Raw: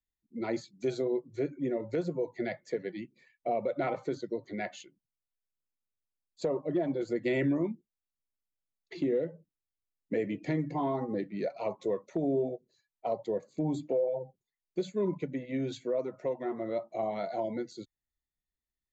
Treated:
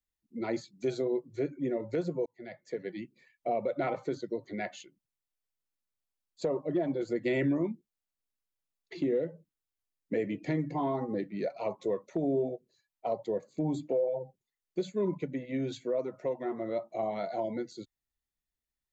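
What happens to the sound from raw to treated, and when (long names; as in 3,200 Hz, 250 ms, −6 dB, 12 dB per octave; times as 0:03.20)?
0:02.26–0:02.95: fade in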